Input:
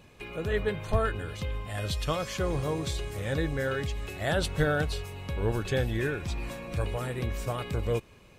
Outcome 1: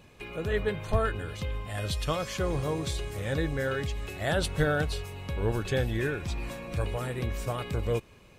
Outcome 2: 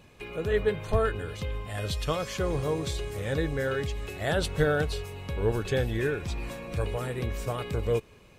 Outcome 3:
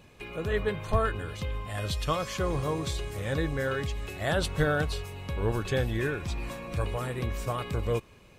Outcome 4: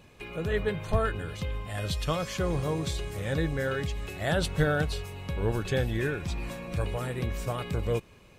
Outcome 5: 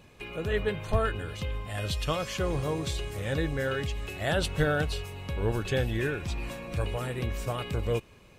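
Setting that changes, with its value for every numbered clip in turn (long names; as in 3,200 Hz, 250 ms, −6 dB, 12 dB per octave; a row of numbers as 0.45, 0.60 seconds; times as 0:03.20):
dynamic equaliser, frequency: 9,500, 440, 1,100, 170, 2,800 Hertz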